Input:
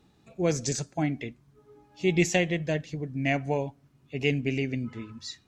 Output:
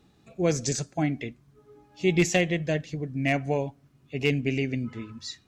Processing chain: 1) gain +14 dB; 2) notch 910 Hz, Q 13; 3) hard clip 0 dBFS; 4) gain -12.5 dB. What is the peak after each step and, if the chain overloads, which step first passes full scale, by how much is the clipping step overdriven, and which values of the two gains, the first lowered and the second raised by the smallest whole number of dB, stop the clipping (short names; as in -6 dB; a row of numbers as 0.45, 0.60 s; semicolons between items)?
+5.0, +5.0, 0.0, -12.5 dBFS; step 1, 5.0 dB; step 1 +9 dB, step 4 -7.5 dB